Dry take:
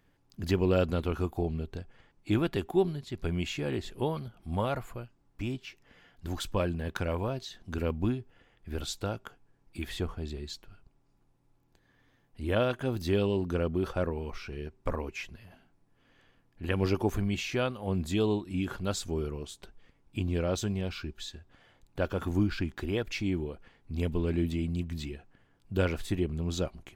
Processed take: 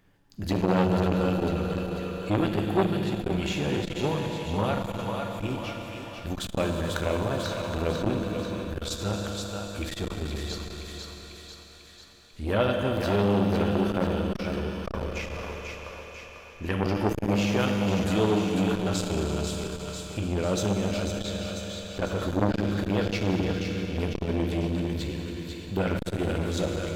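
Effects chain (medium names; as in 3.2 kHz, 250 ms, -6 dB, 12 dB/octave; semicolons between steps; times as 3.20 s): thinning echo 495 ms, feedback 58%, high-pass 540 Hz, level -5.5 dB; on a send at -1.5 dB: reverberation RT60 4.7 s, pre-delay 5 ms; on the sum: transformer saturation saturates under 900 Hz; trim +4 dB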